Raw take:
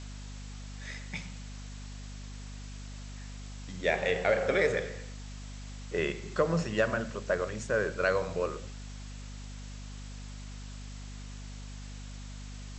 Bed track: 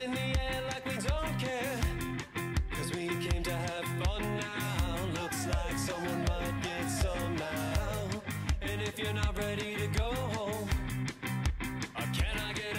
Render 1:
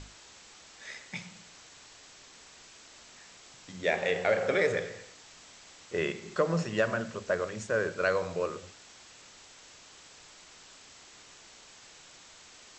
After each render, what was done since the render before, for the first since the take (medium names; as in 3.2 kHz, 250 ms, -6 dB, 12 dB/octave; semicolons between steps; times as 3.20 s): hum notches 50/100/150/200/250 Hz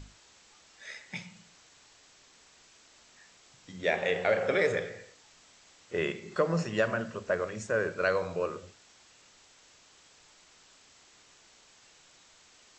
noise print and reduce 6 dB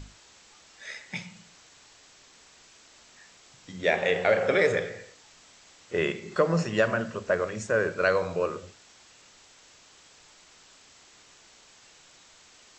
trim +4 dB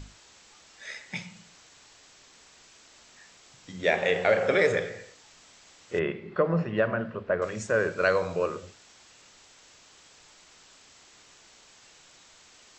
5.99–7.42 s: distance through air 420 m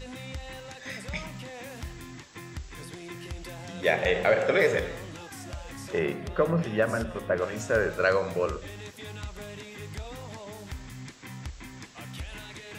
add bed track -7 dB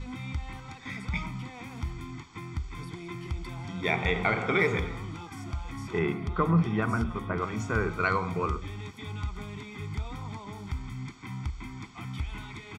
low-pass 2.2 kHz 6 dB/octave; comb 0.9 ms, depth 91%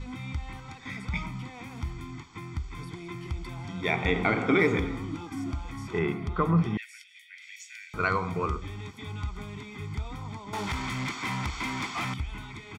4.05–5.67 s: small resonant body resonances 280 Hz, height 12 dB; 6.77–7.94 s: steep high-pass 1.9 kHz 72 dB/octave; 10.53–12.14 s: overdrive pedal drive 26 dB, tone 5.7 kHz, clips at -22.5 dBFS